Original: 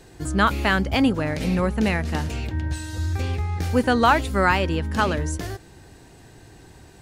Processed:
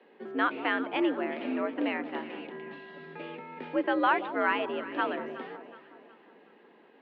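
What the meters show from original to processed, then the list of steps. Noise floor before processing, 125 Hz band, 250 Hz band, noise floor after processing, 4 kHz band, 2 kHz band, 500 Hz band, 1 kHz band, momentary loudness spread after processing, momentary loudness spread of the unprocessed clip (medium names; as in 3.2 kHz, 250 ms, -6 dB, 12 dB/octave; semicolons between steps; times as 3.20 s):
-48 dBFS, -32.0 dB, -9.0 dB, -59 dBFS, -11.0 dB, -7.0 dB, -6.5 dB, -7.5 dB, 17 LU, 10 LU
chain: on a send: echo whose repeats swap between lows and highs 184 ms, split 950 Hz, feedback 66%, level -11 dB; on the sum: mistuned SSB +74 Hz 170–3100 Hz; trim -8 dB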